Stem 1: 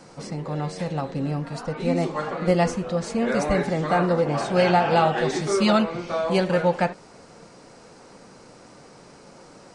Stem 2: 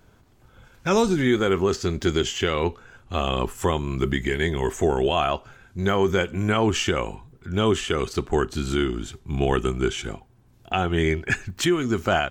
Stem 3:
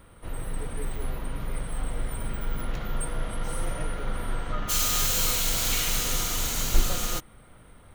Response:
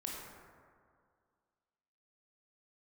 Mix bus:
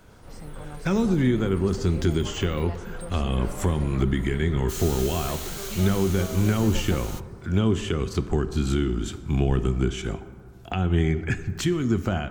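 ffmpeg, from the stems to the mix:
-filter_complex "[0:a]acompressor=threshold=-24dB:ratio=6,adelay=100,volume=-11.5dB,asplit=3[a][b][c];[a]atrim=end=4.03,asetpts=PTS-STARTPTS,afade=t=out:st=4.026:d=0.004:c=hsin[d];[b]atrim=start=4.03:end=5.28,asetpts=PTS-STARTPTS,volume=0[e];[c]atrim=start=5.28,asetpts=PTS-STARTPTS,afade=t=in:d=0.004:c=hsin[f];[d][e][f]concat=n=3:v=0:a=1[g];[1:a]acrossover=split=260[h][i];[i]acompressor=threshold=-35dB:ratio=5[j];[h][j]amix=inputs=2:normalize=0,volume=2.5dB,asplit=2[k][l];[l]volume=-9dB[m];[2:a]volume=-10.5dB,asplit=2[n][o];[o]volume=-20dB[p];[3:a]atrim=start_sample=2205[q];[m][p]amix=inputs=2:normalize=0[r];[r][q]afir=irnorm=-1:irlink=0[s];[g][k][n][s]amix=inputs=4:normalize=0"

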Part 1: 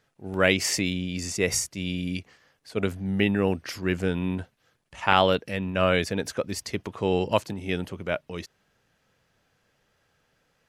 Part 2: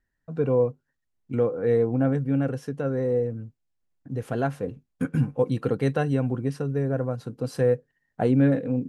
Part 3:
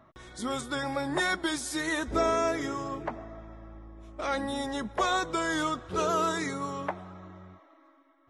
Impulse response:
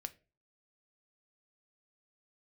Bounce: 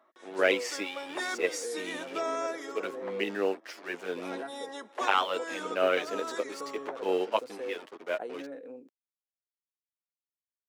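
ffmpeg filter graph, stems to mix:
-filter_complex "[0:a]acrusher=bits=5:mix=0:aa=0.5,lowpass=f=3k:p=1,asplit=2[a][b];[b]adelay=9.2,afreqshift=0.74[c];[a][c]amix=inputs=2:normalize=1,volume=0dB,asplit=2[d][e];[1:a]acompressor=threshold=-22dB:ratio=6,volume=-12dB,asplit=2[f][g];[g]volume=-4dB[h];[2:a]volume=-4dB[i];[e]apad=whole_len=365878[j];[i][j]sidechaincompress=threshold=-29dB:ratio=8:attack=8.5:release=333[k];[3:a]atrim=start_sample=2205[l];[h][l]afir=irnorm=-1:irlink=0[m];[d][f][k][m]amix=inputs=4:normalize=0,aeval=exprs='0.501*(cos(1*acos(clip(val(0)/0.501,-1,1)))-cos(1*PI/2))+0.0141*(cos(7*acos(clip(val(0)/0.501,-1,1)))-cos(7*PI/2))':c=same,highpass=f=330:w=0.5412,highpass=f=330:w=1.3066"

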